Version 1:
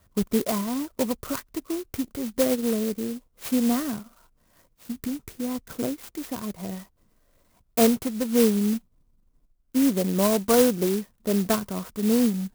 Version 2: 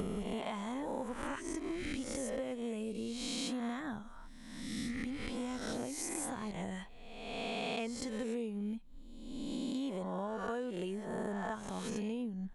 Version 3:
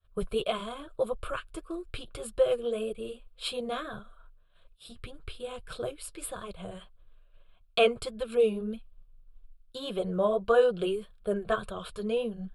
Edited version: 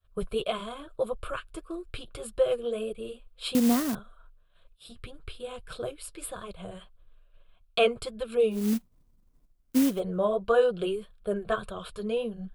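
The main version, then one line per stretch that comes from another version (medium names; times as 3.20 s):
3
3.55–3.95 s: from 1
8.62–9.89 s: from 1, crossfade 0.24 s
not used: 2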